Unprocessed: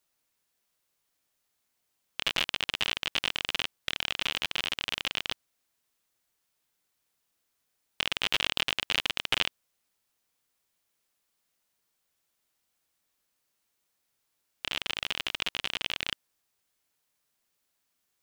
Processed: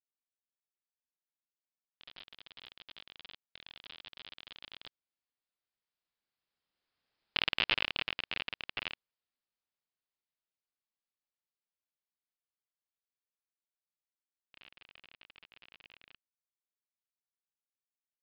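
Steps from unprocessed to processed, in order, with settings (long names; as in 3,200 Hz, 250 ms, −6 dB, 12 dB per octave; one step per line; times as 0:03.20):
source passing by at 0:07.31, 29 m/s, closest 11 metres
downsampling to 11,025 Hz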